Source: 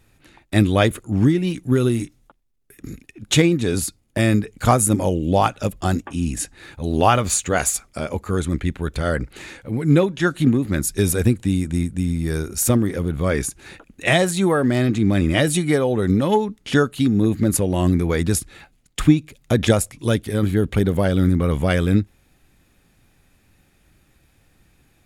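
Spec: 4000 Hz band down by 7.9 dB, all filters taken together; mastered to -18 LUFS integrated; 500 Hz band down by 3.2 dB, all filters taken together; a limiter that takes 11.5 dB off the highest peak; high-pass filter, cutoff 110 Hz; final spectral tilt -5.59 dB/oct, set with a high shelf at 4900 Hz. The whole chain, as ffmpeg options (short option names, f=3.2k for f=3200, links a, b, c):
-af "highpass=110,equalizer=f=500:t=o:g=-4,equalizer=f=4k:t=o:g=-7,highshelf=f=4.9k:g=-8,volume=7dB,alimiter=limit=-6dB:level=0:latency=1"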